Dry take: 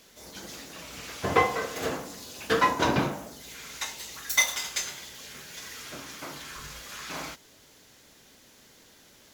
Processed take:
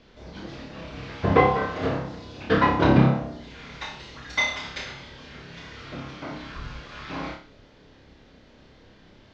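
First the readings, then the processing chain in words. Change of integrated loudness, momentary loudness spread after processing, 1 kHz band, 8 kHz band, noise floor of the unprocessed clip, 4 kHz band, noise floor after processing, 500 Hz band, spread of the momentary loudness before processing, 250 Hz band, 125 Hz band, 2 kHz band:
+5.5 dB, 22 LU, +3.0 dB, -14.5 dB, -57 dBFS, -2.0 dB, -54 dBFS, +5.0 dB, 17 LU, +9.5 dB, +12.5 dB, +1.5 dB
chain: LPF 4600 Hz 24 dB/oct; tilt -2.5 dB/oct; flutter echo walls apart 5.1 m, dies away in 0.42 s; gain +1.5 dB

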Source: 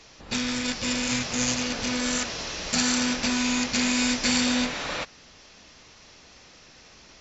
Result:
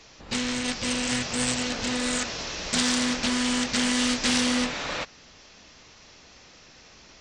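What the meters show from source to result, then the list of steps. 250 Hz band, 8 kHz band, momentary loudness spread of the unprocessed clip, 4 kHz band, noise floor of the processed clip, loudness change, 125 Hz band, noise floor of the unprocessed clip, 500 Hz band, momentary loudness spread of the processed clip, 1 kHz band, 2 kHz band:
-0.5 dB, n/a, 8 LU, 0.0 dB, -52 dBFS, -0.5 dB, -0.5 dB, -52 dBFS, +1.0 dB, 8 LU, +0.5 dB, -0.5 dB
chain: Doppler distortion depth 0.35 ms

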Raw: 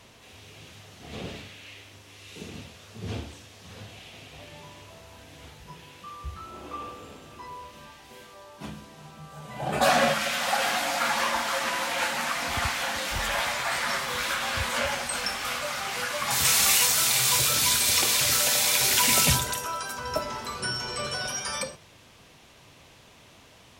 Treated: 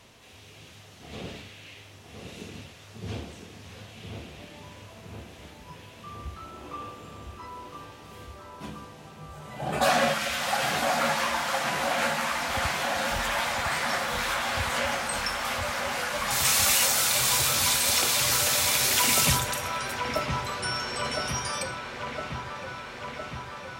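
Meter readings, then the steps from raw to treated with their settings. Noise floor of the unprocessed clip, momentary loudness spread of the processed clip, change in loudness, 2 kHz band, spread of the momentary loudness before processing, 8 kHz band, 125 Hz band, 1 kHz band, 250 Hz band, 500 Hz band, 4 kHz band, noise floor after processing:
-53 dBFS, 23 LU, -1.0 dB, 0.0 dB, 22 LU, -1.5 dB, +1.0 dB, +0.5 dB, +1.0 dB, +0.5 dB, -1.5 dB, -49 dBFS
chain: dark delay 1.011 s, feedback 74%, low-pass 2000 Hz, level -5 dB; gain -1.5 dB

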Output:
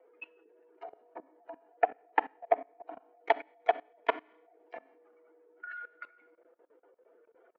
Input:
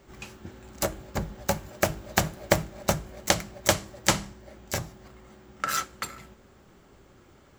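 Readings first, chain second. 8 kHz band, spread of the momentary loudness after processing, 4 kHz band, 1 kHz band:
under -40 dB, 19 LU, -19.5 dB, -1.0 dB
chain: spectral contrast raised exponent 2; mistuned SSB +110 Hz 280–2900 Hz; Schroeder reverb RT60 0.65 s, combs from 29 ms, DRR 15.5 dB; level quantiser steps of 21 dB

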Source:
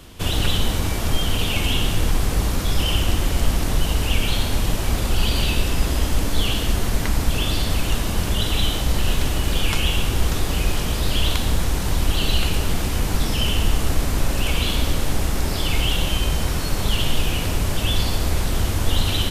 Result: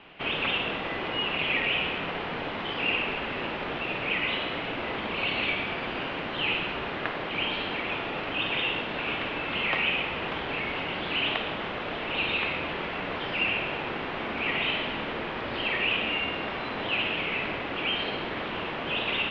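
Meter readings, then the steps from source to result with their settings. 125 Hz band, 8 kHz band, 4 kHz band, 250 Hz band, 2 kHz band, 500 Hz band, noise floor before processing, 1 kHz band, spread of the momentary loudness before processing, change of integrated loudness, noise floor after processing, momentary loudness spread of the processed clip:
-20.0 dB, under -35 dB, -6.0 dB, -8.5 dB, +2.0 dB, -3.0 dB, -24 dBFS, -1.5 dB, 2 LU, -6.0 dB, -34 dBFS, 6 LU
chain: mistuned SSB -310 Hz 530–3400 Hz; flutter echo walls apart 9.1 m, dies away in 0.31 s

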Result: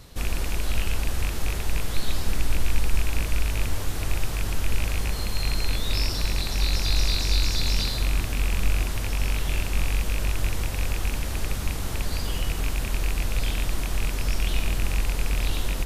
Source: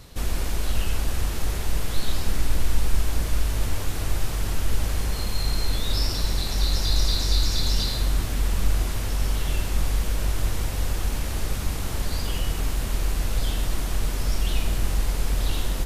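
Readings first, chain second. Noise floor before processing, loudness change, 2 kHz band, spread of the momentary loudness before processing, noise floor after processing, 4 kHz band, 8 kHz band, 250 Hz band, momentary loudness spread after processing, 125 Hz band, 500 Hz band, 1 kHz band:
-28 dBFS, -0.5 dB, +3.5 dB, 6 LU, -29 dBFS, -0.5 dB, -1.0 dB, -1.0 dB, 6 LU, -1.0 dB, -1.0 dB, -0.5 dB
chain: rattling part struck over -22 dBFS, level -19 dBFS; gain -1 dB

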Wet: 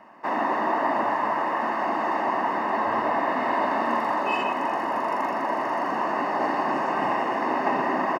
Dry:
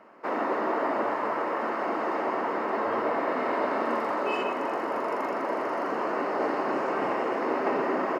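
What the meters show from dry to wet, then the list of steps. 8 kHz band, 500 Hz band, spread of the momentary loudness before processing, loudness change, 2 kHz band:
n/a, -0.5 dB, 2 LU, +3.5 dB, +4.5 dB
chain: comb 1.1 ms, depth 62%; gain +2.5 dB

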